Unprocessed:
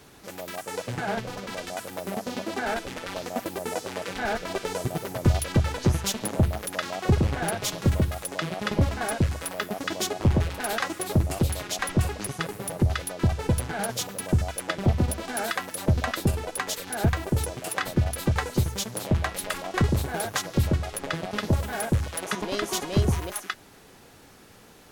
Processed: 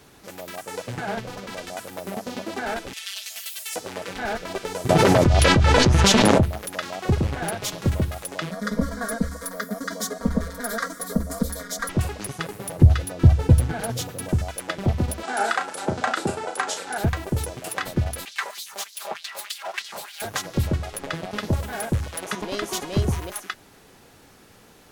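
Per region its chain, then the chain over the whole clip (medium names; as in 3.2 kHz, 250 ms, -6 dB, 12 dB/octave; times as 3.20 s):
2.93–3.76 s: resonant high-pass 3 kHz, resonance Q 1.5 + treble shelf 4.9 kHz +7 dB + comb 4.5 ms, depth 89%
4.89–6.43 s: distance through air 68 m + level flattener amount 100%
8.51–11.89 s: static phaser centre 540 Hz, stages 8 + comb 4.3 ms, depth 95%
12.77–14.29 s: bass shelf 300 Hz +11.5 dB + comb of notches 200 Hz
15.23–16.98 s: cabinet simulation 200–9500 Hz, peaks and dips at 400 Hz +4 dB, 810 Hz +9 dB, 1.4 kHz +9 dB, 7.7 kHz +4 dB + doubling 35 ms -7 dB + tape noise reduction on one side only encoder only
18.25–20.22 s: comb filter that takes the minimum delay 5 ms + bass shelf 100 Hz +9 dB + LFO high-pass sine 3.3 Hz 630–4300 Hz
whole clip: none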